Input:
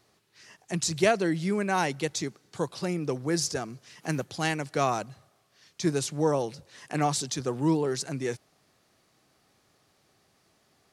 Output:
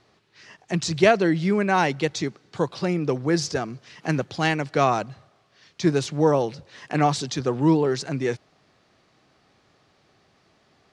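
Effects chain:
low-pass filter 4,500 Hz 12 dB per octave
level +6 dB

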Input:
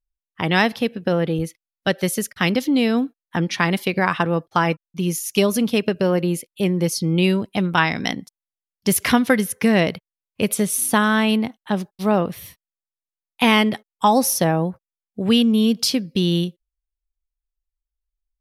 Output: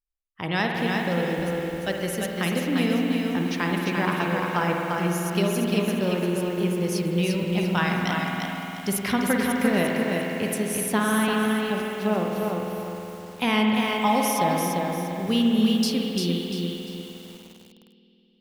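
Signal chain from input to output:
spring reverb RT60 3.7 s, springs 51 ms, chirp 35 ms, DRR 0.5 dB
feedback echo at a low word length 346 ms, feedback 35%, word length 6 bits, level −3.5 dB
level −8.5 dB

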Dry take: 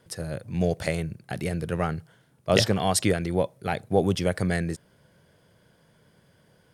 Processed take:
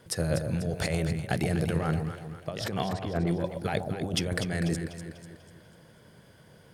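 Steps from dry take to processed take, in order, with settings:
0:02.87–0:03.27: low-pass filter 1,200 Hz 12 dB per octave
compressor whose output falls as the input rises −30 dBFS, ratio −1
delay that swaps between a low-pass and a high-pass 123 ms, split 860 Hz, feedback 67%, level −5.5 dB

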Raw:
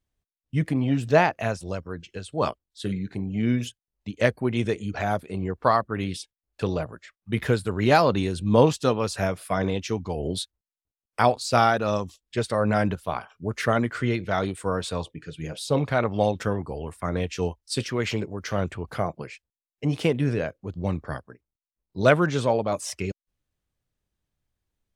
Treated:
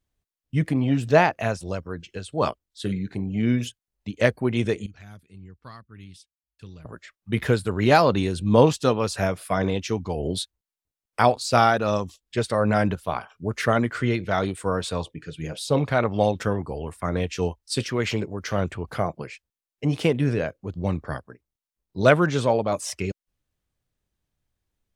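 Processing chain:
0:04.86–0:06.85: guitar amp tone stack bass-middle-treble 6-0-2
level +1.5 dB

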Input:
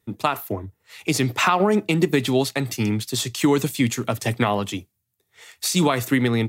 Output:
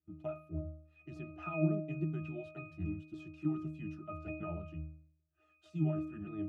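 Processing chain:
pitch shifter swept by a sawtooth −4 semitones, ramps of 285 ms
resonances in every octave D#, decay 0.58 s
level +2.5 dB

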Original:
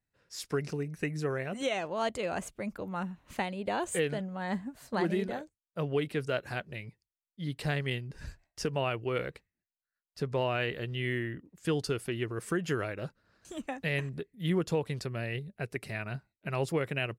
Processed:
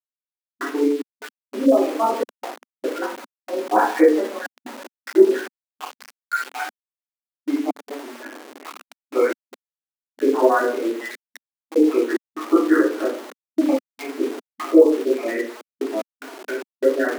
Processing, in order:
time-frequency cells dropped at random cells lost 72%
low-shelf EQ 490 Hz +7.5 dB
convolution reverb RT60 0.50 s, pre-delay 3 ms, DRR −12 dB
gate pattern ".x.xx.xxxxx" 74 BPM −24 dB
Butterworth low-pass 2,200 Hz 72 dB per octave
centre clipping without the shift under −30.5 dBFS
linear-phase brick-wall high-pass 240 Hz
level +2 dB

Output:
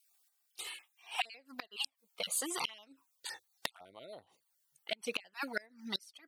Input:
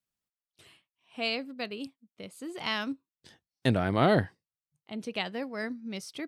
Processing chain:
time-frequency cells dropped at random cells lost 22%
parametric band 770 Hz +15 dB 2.4 octaves
in parallel at +2 dB: downward compressor 6 to 1, threshold −31 dBFS, peak gain reduction 20 dB
on the sum: flanger swept by the level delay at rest 2.6 ms, full sweep at −16.5 dBFS
first-order pre-emphasis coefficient 0.97
gate with flip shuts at −34 dBFS, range −28 dB
level +13 dB

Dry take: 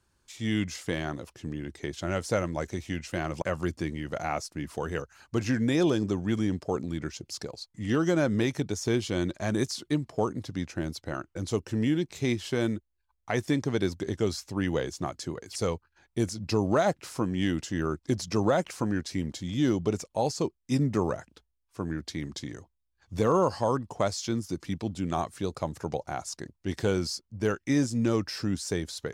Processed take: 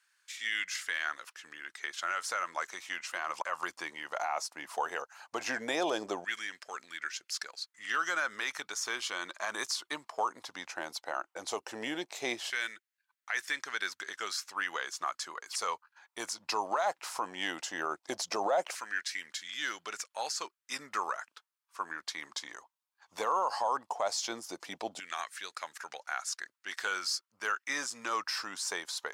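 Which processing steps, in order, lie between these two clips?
auto-filter high-pass saw down 0.16 Hz 670–1,800 Hz
brickwall limiter −22 dBFS, peak gain reduction 10.5 dB
level +1 dB

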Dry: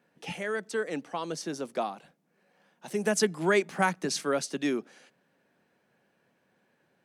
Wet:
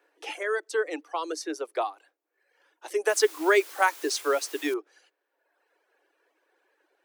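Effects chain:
reverb reduction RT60 1.1 s
0:03.09–0:04.74: bit-depth reduction 8 bits, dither triangular
Chebyshev high-pass with heavy ripple 300 Hz, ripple 3 dB
level +5 dB

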